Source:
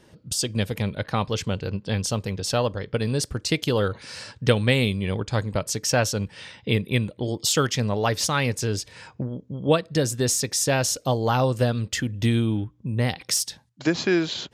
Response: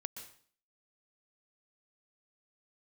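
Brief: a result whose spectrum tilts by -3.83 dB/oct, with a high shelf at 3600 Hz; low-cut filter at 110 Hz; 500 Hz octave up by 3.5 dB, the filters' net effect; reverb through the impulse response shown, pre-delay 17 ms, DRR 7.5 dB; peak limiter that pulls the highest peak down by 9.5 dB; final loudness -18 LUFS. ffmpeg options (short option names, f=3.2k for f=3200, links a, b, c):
-filter_complex "[0:a]highpass=110,equalizer=f=500:t=o:g=4,highshelf=f=3.6k:g=4,alimiter=limit=-11.5dB:level=0:latency=1,asplit=2[a][b];[1:a]atrim=start_sample=2205,adelay=17[c];[b][c]afir=irnorm=-1:irlink=0,volume=-5dB[d];[a][d]amix=inputs=2:normalize=0,volume=5.5dB"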